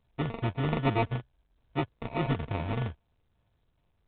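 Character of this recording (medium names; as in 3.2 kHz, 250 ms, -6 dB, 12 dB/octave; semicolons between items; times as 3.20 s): a buzz of ramps at a fixed pitch in blocks of 64 samples; phasing stages 2, 2.4 Hz, lowest notch 460–2700 Hz; aliases and images of a low sample rate 1.6 kHz, jitter 0%; µ-law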